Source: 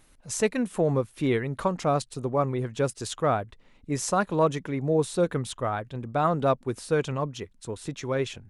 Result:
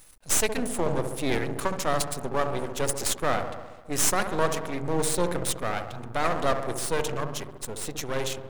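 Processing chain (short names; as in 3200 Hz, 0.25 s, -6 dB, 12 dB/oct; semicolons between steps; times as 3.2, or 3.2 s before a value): pre-emphasis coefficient 0.8; in parallel at -8 dB: sine folder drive 6 dB, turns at -17 dBFS; on the sum: dark delay 68 ms, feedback 69%, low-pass 1000 Hz, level -6.5 dB; half-wave rectifier; gain +8 dB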